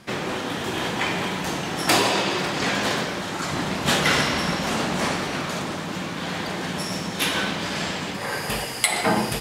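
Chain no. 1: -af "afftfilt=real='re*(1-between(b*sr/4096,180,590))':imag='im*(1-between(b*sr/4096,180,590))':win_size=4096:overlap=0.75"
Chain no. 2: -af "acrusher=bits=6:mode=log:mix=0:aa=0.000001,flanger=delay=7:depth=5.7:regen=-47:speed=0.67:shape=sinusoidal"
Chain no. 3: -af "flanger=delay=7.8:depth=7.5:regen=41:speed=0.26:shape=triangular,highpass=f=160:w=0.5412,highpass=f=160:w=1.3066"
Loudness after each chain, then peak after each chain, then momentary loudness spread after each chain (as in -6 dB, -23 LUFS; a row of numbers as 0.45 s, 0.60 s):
-25.0 LUFS, -28.0 LUFS, -28.0 LUFS; -2.0 dBFS, -7.0 dBFS, -6.5 dBFS; 9 LU, 8 LU, 9 LU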